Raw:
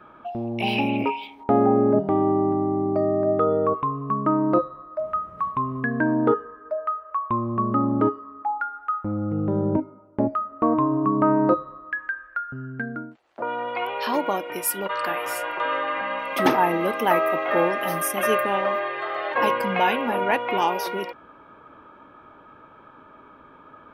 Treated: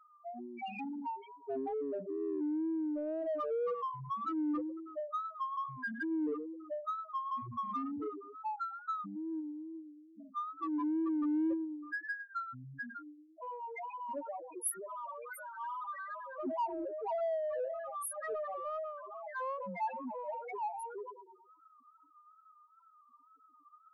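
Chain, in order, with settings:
first-order pre-emphasis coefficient 0.8
0:09.40–0:10.37: downward compressor 16 to 1, threshold −46 dBFS, peak gain reduction 16 dB
on a send: bucket-brigade delay 109 ms, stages 1,024, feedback 55%, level −9 dB
on the sum: spectral peaks only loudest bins 2
in parallel at −6.5 dB: soft clipping −39.5 dBFS, distortion −10 dB
on the sum: tape wow and flutter 77 cents

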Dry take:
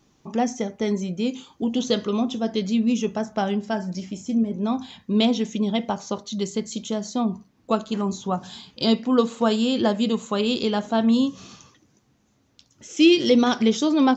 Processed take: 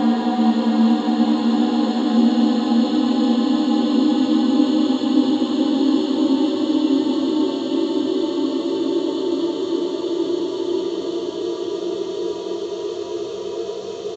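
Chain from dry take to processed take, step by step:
echo with shifted repeats 103 ms, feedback 50%, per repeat +75 Hz, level −3.5 dB
extreme stretch with random phases 40×, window 0.25 s, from 0:11.09
level −1 dB

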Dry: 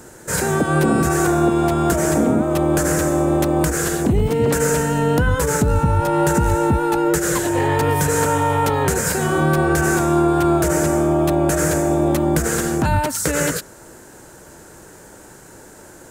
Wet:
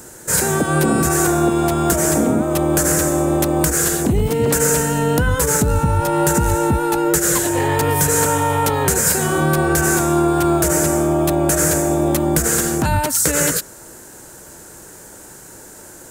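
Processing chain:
high-shelf EQ 5,300 Hz +9.5 dB

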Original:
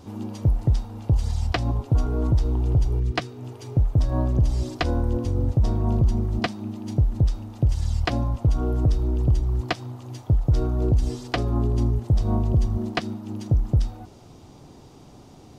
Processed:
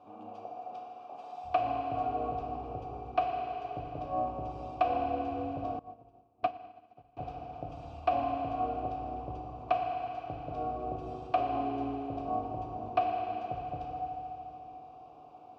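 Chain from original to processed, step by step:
0:00.45–0:01.44: gate on every frequency bin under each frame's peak −25 dB weak
formant filter a
high-shelf EQ 3,500 Hz −10 dB
feedback delay network reverb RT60 3.3 s, high-frequency decay 1×, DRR −1 dB
0:05.79–0:07.17: expander for the loud parts 2.5 to 1, over −46 dBFS
level +4 dB

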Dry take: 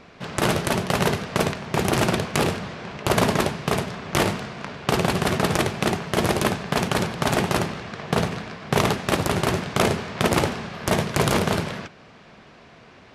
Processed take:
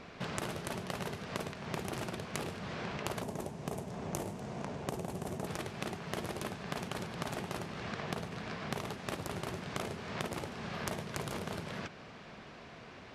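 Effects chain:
0:03.22–0:05.47: flat-topped bell 2,400 Hz −9.5 dB 2.4 octaves
downward compressor 16 to 1, threshold −32 dBFS, peak gain reduction 18.5 dB
level −2.5 dB

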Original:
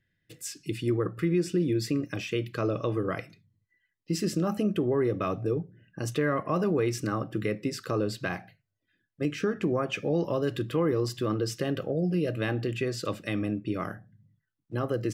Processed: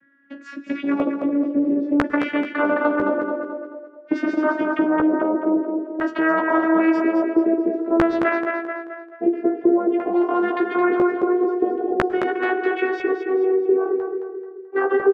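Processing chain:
vocoder with a gliding carrier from C#4, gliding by +6 semitones
dynamic equaliser 450 Hz, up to +6 dB, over −39 dBFS, Q 1.1
auto-filter low-pass square 0.5 Hz 480–1,500 Hz
double-tracking delay 15 ms −4.5 dB
feedback echo with a high-pass in the loop 217 ms, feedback 37%, high-pass 230 Hz, level −7 dB
on a send at −21 dB: convolution reverb RT60 0.70 s, pre-delay 98 ms
on the sum: every bin compressed towards the loudest bin 2 to 1
level +2.5 dB

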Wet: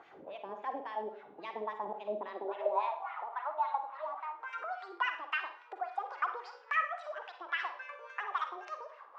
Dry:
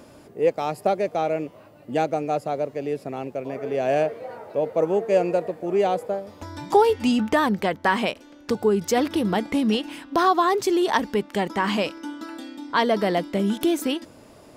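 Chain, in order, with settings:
gliding playback speed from 132% → 185%
downward compressor 2.5 to 1, threshold −33 dBFS, peak gain reduction 14 dB
high-pass filter sweep 64 Hz → 1,100 Hz, 0:01.38–0:03.14
Gaussian smoothing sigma 1.6 samples
LFO wah 3.6 Hz 320–2,500 Hz, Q 2
four-comb reverb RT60 0.46 s, DRR 6.5 dB

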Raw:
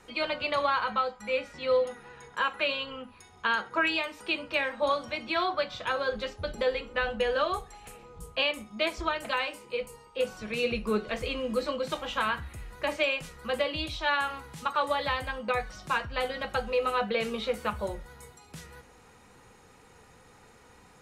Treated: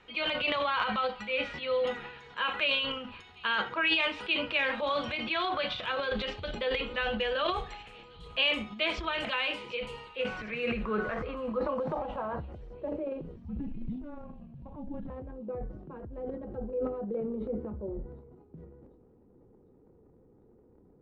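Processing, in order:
low-pass filter sweep 3,100 Hz → 360 Hz, 0:09.93–0:13.19
0:13.36–0:15.10: frequency shifter −300 Hz
transient designer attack −1 dB, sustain +11 dB
delay with a high-pass on its return 749 ms, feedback 52%, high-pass 4,900 Hz, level −13 dB
level −5 dB

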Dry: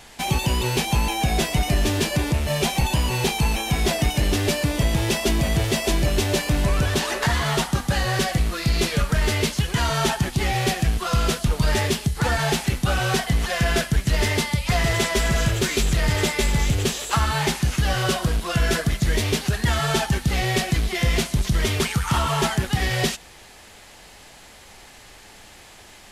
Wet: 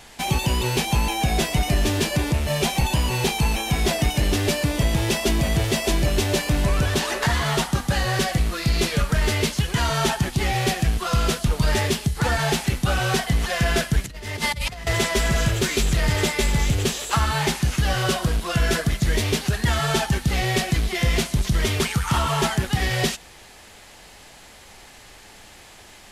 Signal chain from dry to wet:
0:14.04–0:14.87: compressor whose output falls as the input rises −27 dBFS, ratio −0.5

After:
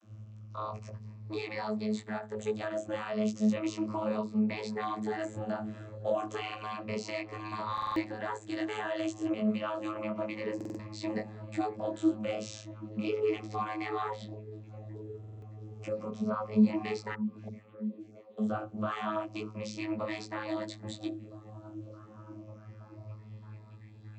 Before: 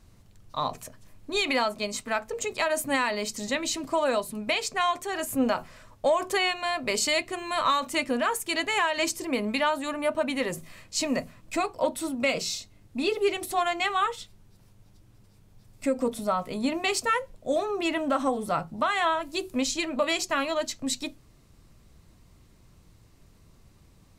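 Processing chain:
rippled gain that drifts along the octave scale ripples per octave 0.87, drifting −0.32 Hz, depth 8 dB
in parallel at −2 dB: downward compressor 6 to 1, threshold −36 dBFS, peak gain reduction 18.5 dB
on the sum: brickwall limiter −20 dBFS, peak gain reduction 9 dB
chorus effect 1.2 Hz, delay 19 ms, depth 2.3 ms
0:17.14–0:18.37: gate with flip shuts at −27 dBFS, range −39 dB
channel vocoder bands 32, saw 107 Hz
on a send: echo through a band-pass that steps 621 ms, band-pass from 160 Hz, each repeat 0.7 octaves, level −9 dB
on the sum: buffer that repeats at 0:07.73/0:10.56/0:15.19, samples 2,048, times 4

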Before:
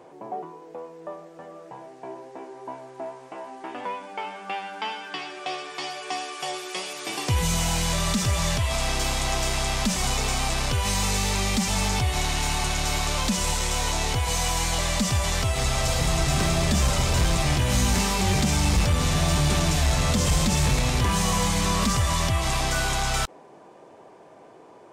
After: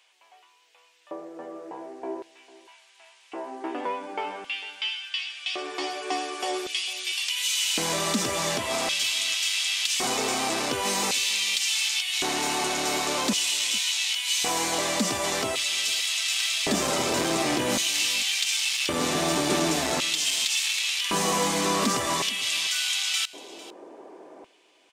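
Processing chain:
mains-hum notches 50/100/150 Hz
auto-filter high-pass square 0.45 Hz 310–2,900 Hz
single-tap delay 450 ms −19.5 dB

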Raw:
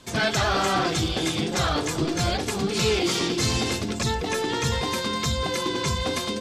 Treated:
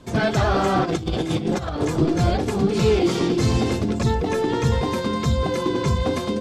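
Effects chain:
tilt shelving filter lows +7 dB, about 1,300 Hz
0:00.84–0:01.85: compressor whose output falls as the input rises −23 dBFS, ratio −0.5

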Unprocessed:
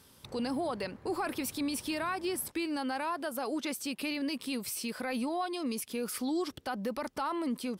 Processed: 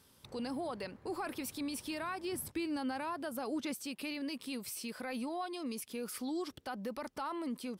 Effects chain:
0:02.32–0:03.75: parametric band 98 Hz +11.5 dB 2.2 octaves
level −5.5 dB

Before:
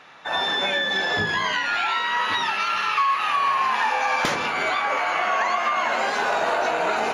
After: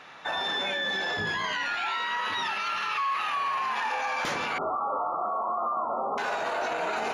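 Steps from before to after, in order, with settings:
0:04.58–0:06.18: linear-phase brick-wall low-pass 1,400 Hz
brickwall limiter −21.5 dBFS, peak gain reduction 10.5 dB

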